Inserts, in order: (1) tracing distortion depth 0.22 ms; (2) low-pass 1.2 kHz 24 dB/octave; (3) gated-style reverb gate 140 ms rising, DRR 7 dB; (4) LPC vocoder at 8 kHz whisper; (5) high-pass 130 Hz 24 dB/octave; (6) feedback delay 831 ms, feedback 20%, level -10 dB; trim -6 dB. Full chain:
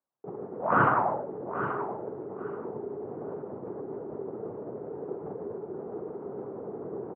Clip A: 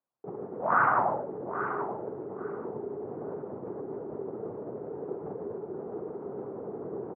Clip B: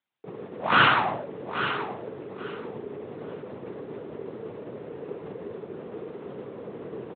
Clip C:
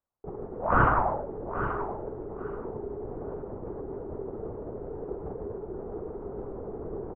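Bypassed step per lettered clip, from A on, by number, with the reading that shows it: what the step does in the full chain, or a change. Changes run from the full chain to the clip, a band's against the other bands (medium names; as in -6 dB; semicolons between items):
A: 1, 125 Hz band -4.0 dB; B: 2, 2 kHz band +8.5 dB; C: 5, 125 Hz band +5.0 dB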